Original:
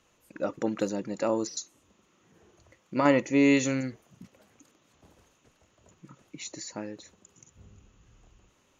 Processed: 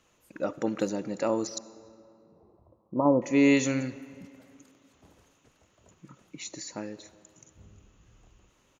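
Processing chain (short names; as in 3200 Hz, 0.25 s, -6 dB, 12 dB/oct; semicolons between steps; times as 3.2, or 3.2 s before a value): 1.58–3.22 steep low-pass 1100 Hz 72 dB/oct; speakerphone echo 0.3 s, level -28 dB; reverb RT60 2.5 s, pre-delay 25 ms, DRR 16.5 dB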